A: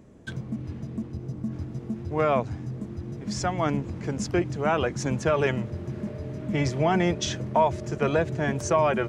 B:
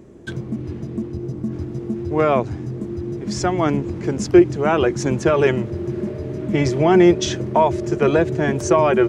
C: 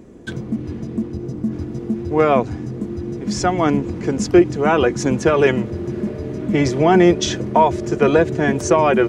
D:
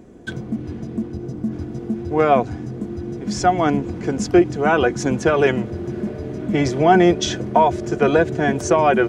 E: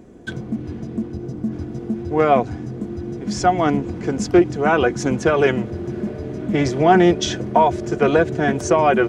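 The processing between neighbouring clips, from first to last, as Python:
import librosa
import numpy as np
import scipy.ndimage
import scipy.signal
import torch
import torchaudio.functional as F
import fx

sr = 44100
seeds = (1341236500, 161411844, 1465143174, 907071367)

y1 = fx.peak_eq(x, sr, hz=360.0, db=11.5, octaves=0.33)
y1 = F.gain(torch.from_numpy(y1), 5.0).numpy()
y2 = y1 + 0.31 * np.pad(y1, (int(4.1 * sr / 1000.0), 0))[:len(y1)]
y2 = F.gain(torch.from_numpy(y2), 2.0).numpy()
y3 = fx.small_body(y2, sr, hz=(720.0, 1500.0, 3300.0), ring_ms=45, db=7)
y3 = F.gain(torch.from_numpy(y3), -2.0).numpy()
y4 = fx.doppler_dist(y3, sr, depth_ms=0.11)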